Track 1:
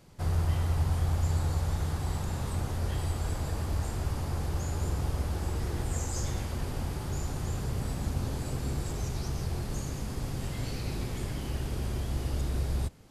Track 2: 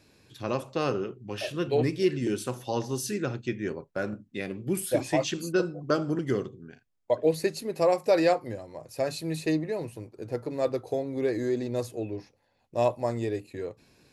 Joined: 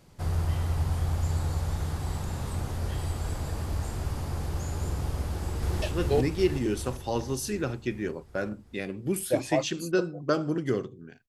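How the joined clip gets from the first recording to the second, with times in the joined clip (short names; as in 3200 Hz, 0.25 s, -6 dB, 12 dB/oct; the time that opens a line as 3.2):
track 1
5.24–5.82 echo throw 0.38 s, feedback 65%, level -0.5 dB
5.82 switch to track 2 from 1.43 s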